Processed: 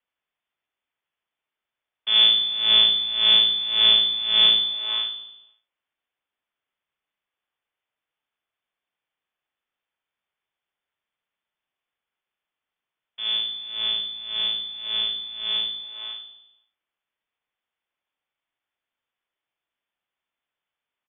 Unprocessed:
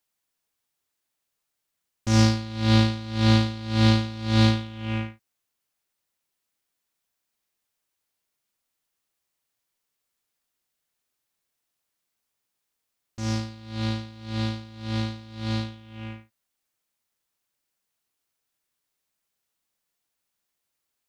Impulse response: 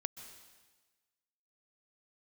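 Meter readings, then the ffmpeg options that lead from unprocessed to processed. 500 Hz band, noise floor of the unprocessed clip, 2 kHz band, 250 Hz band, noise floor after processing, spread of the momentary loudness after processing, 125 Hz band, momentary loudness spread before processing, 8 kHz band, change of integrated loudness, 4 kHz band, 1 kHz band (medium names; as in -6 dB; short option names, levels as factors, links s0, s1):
-9.0 dB, -81 dBFS, +0.5 dB, under -20 dB, under -85 dBFS, 16 LU, under -30 dB, 15 LU, under -35 dB, +6.0 dB, +17.0 dB, -6.5 dB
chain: -af "aecho=1:1:73|146|219|292|365|438|511:0.335|0.198|0.117|0.0688|0.0406|0.0239|0.0141,lowpass=f=3100:t=q:w=0.5098,lowpass=f=3100:t=q:w=0.6013,lowpass=f=3100:t=q:w=0.9,lowpass=f=3100:t=q:w=2.563,afreqshift=-3600"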